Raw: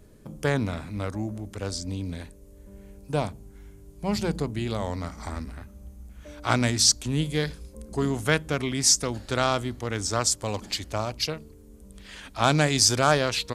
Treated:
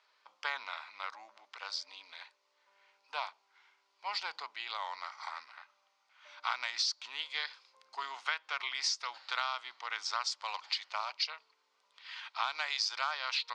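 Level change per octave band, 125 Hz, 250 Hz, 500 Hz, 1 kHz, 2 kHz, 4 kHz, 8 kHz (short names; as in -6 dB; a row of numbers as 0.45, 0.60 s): under -40 dB, under -40 dB, -24.5 dB, -7.5 dB, -6.5 dB, -7.5 dB, -19.5 dB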